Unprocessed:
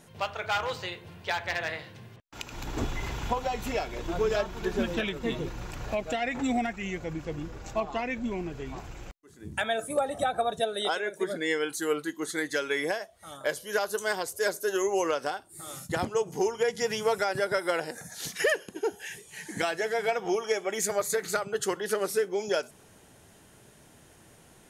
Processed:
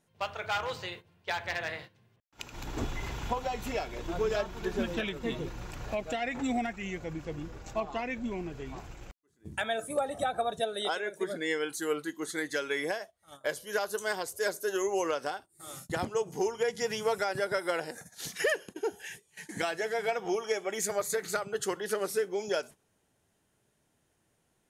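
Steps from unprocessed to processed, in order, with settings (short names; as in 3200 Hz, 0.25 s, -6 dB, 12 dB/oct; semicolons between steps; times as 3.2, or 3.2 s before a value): gate -42 dBFS, range -15 dB; gain -3 dB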